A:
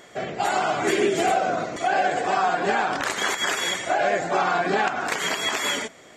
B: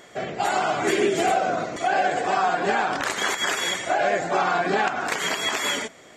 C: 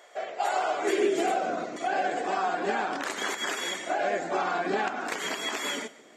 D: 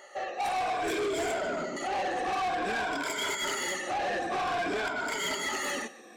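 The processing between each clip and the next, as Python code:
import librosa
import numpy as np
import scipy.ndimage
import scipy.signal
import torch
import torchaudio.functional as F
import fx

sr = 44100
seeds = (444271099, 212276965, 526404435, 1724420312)

y1 = x
y2 = fx.filter_sweep_highpass(y1, sr, from_hz=610.0, to_hz=250.0, start_s=0.33, end_s=1.43, q=1.6)
y2 = y2 + 10.0 ** (-19.5 / 20.0) * np.pad(y2, (int(143 * sr / 1000.0), 0))[:len(y2)]
y2 = y2 * 10.0 ** (-7.0 / 20.0)
y3 = fx.spec_ripple(y2, sr, per_octave=1.7, drift_hz=-0.54, depth_db=18)
y3 = 10.0 ** (-27.5 / 20.0) * np.tanh(y3 / 10.0 ** (-27.5 / 20.0))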